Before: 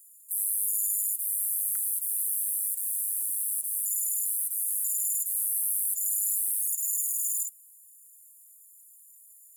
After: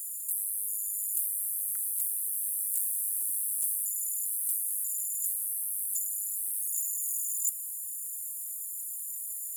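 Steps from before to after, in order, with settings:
compressor whose output falls as the input rises −39 dBFS, ratio −1
level +7 dB

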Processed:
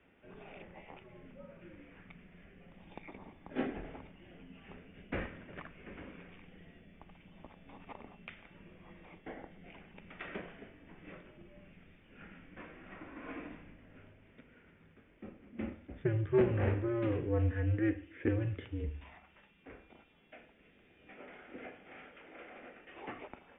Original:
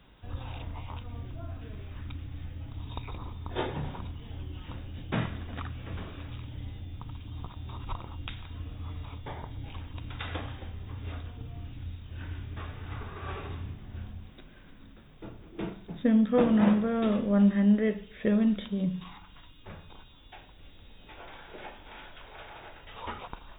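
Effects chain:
phase distortion by the signal itself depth 0.19 ms
single-sideband voice off tune −110 Hz 170–2,800 Hz
graphic EQ with 10 bands 125 Hz −7 dB, 250 Hz +6 dB, 500 Hz +4 dB, 1,000 Hz −7 dB, 2,000 Hz +5 dB
level −5.5 dB

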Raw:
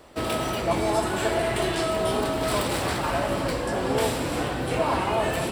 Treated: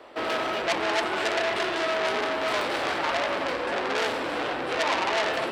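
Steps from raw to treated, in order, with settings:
three-way crossover with the lows and the highs turned down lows −19 dB, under 290 Hz, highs −18 dB, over 4,200 Hz
saturating transformer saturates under 3,600 Hz
level +4.5 dB

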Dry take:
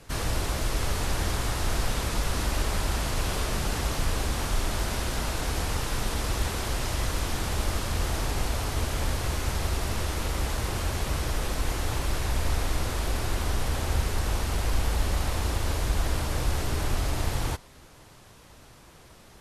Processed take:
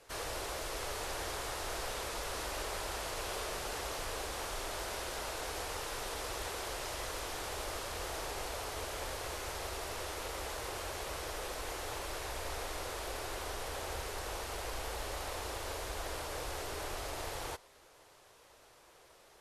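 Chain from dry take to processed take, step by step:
low shelf with overshoot 310 Hz −11.5 dB, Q 1.5
level −7.5 dB

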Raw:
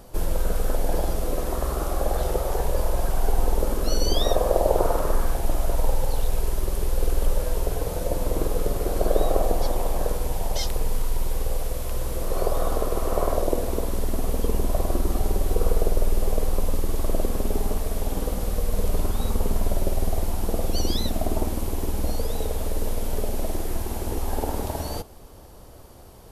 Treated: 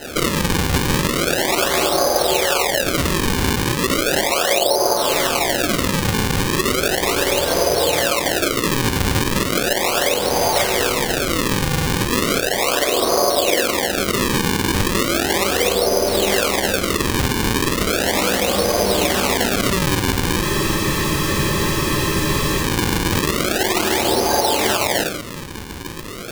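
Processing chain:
high-pass filter 240 Hz 12 dB per octave
high-frequency loss of the air 200 metres
rectangular room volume 300 cubic metres, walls furnished, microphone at 5 metres
sample-and-hold swept by an LFO 38×, swing 160% 0.36 Hz
tilt shelving filter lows −5 dB, about 1,200 Hz
downward compressor 12 to 1, threshold −27 dBFS, peak gain reduction 17.5 dB
boost into a limiter +15 dB
frozen spectrum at 0:20.45, 2.17 s
level −1 dB

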